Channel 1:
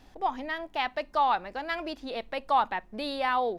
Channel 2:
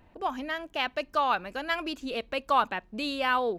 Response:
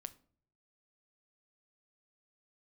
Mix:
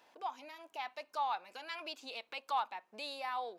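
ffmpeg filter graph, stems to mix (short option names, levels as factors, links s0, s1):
-filter_complex "[0:a]highpass=140,volume=0.398,asplit=2[s0][s1];[1:a]volume=5.31,asoftclip=hard,volume=0.188,volume=-1,volume=0.75[s2];[s1]apad=whole_len=157911[s3];[s2][s3]sidechaincompress=threshold=0.00562:ratio=8:attack=7.1:release=206[s4];[s0][s4]amix=inputs=2:normalize=0,highpass=560,bandreject=f=1900:w=13"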